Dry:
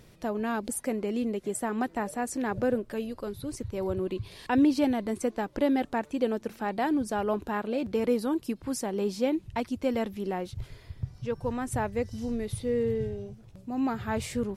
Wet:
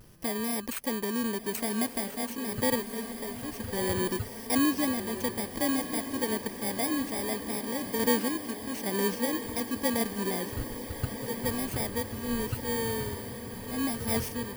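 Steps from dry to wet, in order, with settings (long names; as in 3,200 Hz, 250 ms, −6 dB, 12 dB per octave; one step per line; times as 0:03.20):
samples in bit-reversed order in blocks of 32 samples
sample-and-hold tremolo
pitch vibrato 0.44 Hz 23 cents
on a send: feedback delay with all-pass diffusion 1,289 ms, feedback 71%, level −10 dB
on the sum: level +1.5 dB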